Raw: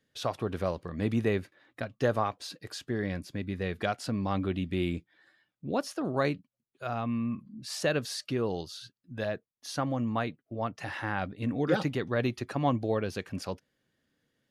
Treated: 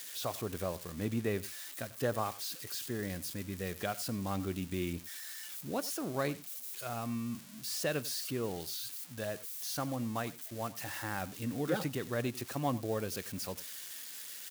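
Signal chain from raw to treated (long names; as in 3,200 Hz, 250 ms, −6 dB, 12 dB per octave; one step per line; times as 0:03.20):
spike at every zero crossing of −28 dBFS
single-tap delay 93 ms −18.5 dB
level −6 dB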